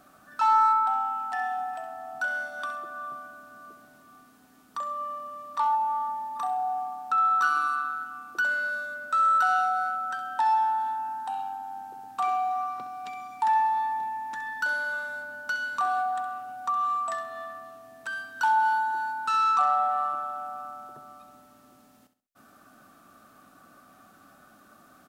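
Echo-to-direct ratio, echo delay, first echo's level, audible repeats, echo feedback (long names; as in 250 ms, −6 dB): −11.5 dB, 66 ms, −12.0 dB, 3, 32%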